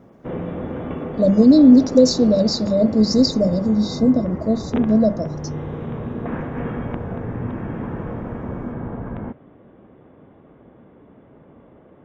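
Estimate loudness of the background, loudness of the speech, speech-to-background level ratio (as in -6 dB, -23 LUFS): -29.0 LUFS, -16.0 LUFS, 13.0 dB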